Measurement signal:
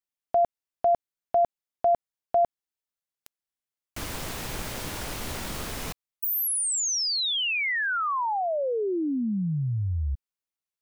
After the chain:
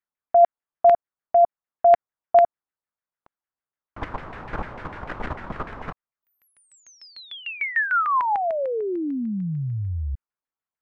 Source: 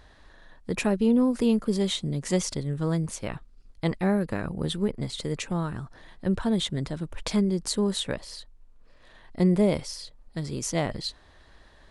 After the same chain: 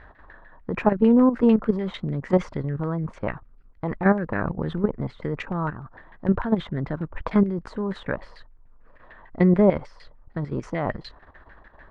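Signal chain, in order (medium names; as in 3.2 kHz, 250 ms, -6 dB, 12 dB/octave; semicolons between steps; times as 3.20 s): level held to a coarse grid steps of 11 dB; LFO low-pass saw down 6.7 Hz 900–2000 Hz; trim +6.5 dB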